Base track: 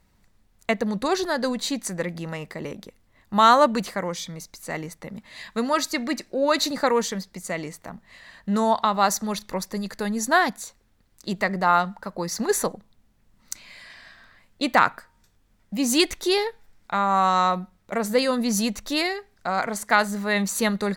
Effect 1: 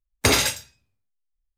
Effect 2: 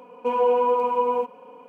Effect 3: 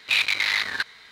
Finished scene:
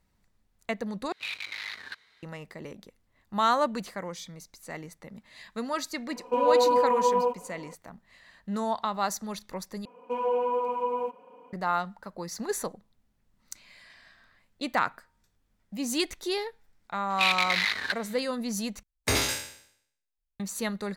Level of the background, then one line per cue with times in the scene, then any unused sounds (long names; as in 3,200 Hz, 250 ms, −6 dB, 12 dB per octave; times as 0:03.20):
base track −8.5 dB
0:01.12: overwrite with 3 −14.5 dB
0:06.07: mix in 2 −1.5 dB + parametric band 2,200 Hz −5 dB 0.38 octaves
0:09.85: overwrite with 2 −7 dB
0:17.10: mix in 3 −3.5 dB
0:18.83: overwrite with 1 −9.5 dB + peak hold with a decay on every bin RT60 0.64 s